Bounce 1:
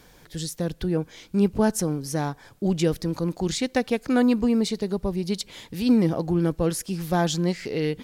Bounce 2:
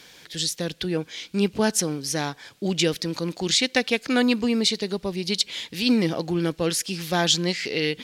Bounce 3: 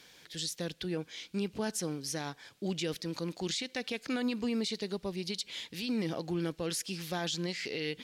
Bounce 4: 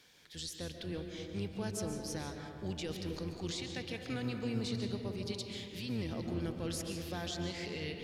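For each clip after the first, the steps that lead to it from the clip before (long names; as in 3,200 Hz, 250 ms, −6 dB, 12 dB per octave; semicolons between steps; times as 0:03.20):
meter weighting curve D
brickwall limiter −16.5 dBFS, peak gain reduction 10 dB; level −8.5 dB
sub-octave generator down 1 octave, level −2 dB; convolution reverb RT60 2.8 s, pre-delay 100 ms, DRR 3.5 dB; level −6.5 dB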